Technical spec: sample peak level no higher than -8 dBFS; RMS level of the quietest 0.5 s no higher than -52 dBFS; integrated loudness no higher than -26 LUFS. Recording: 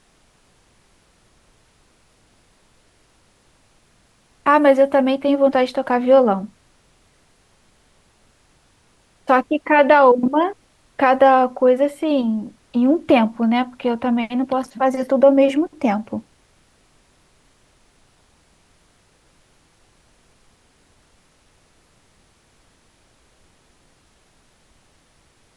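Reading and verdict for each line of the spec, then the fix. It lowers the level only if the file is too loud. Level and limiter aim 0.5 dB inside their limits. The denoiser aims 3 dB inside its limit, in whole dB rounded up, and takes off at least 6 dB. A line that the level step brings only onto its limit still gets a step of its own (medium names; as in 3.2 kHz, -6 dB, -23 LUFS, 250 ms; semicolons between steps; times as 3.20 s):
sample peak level -3.5 dBFS: fail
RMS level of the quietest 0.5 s -58 dBFS: pass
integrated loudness -17.0 LUFS: fail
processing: trim -9.5 dB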